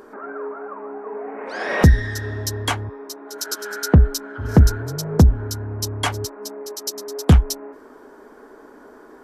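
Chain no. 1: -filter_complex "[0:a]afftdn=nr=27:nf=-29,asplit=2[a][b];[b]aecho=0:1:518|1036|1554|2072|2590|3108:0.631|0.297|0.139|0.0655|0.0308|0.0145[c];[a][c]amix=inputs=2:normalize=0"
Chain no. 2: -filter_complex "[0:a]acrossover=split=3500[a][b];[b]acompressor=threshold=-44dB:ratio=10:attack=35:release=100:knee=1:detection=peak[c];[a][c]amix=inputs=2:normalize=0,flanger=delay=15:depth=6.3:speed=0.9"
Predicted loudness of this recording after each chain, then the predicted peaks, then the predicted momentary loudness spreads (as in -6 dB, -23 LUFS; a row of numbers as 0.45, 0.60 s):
-20.0, -23.0 LUFS; -1.5, -3.0 dBFS; 17, 18 LU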